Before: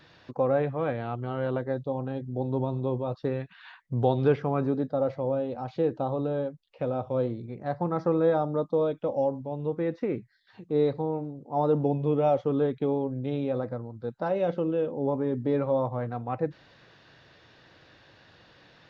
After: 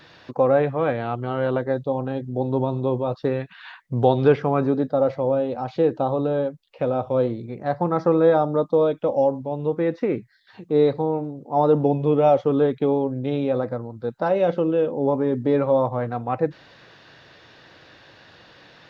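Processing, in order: low shelf 180 Hz -5.5 dB; gain +7.5 dB

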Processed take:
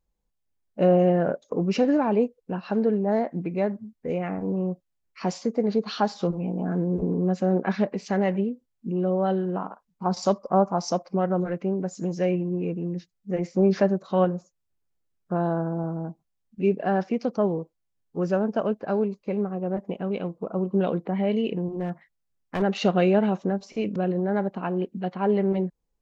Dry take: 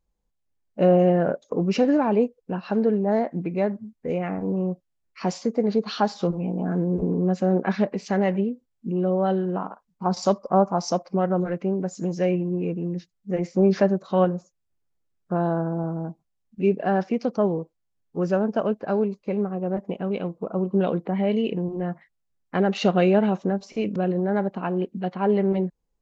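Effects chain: 21.67–22.62 hard clip -20 dBFS, distortion -29 dB; gain -1.5 dB

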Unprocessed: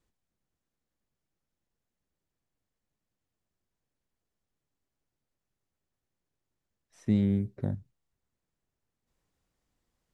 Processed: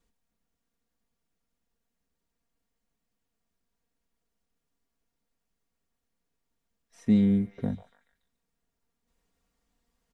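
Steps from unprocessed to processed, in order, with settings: comb 4.3 ms, depth 61%; on a send: delay with a stepping band-pass 0.143 s, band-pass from 910 Hz, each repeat 0.7 oct, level -9 dB; on the sum: gain +1.5 dB

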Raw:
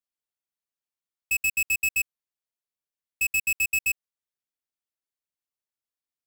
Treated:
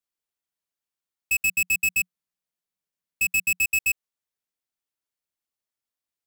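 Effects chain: 1.39–3.62 bell 180 Hz +12 dB 0.34 oct; gain +2 dB

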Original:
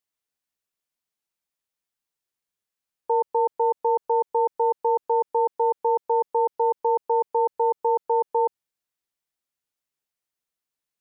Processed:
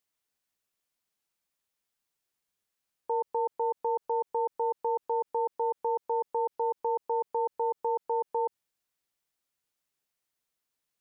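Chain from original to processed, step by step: limiter -24.5 dBFS, peak gain reduction 10.5 dB; gain +2.5 dB

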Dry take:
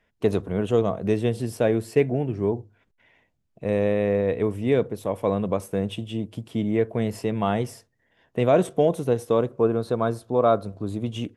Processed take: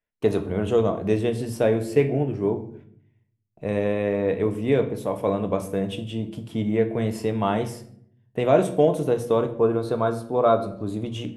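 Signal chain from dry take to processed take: notches 60/120/180/240 Hz; gate with hold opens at -46 dBFS; shoebox room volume 110 m³, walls mixed, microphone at 0.37 m

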